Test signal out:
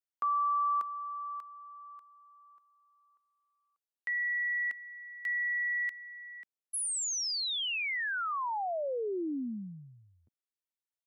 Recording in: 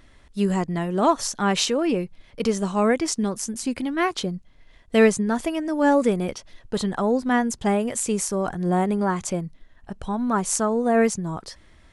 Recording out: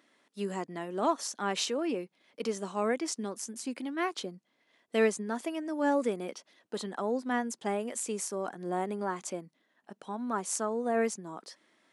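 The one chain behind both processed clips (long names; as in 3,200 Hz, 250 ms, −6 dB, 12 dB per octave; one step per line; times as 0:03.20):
high-pass filter 230 Hz 24 dB per octave
level −9 dB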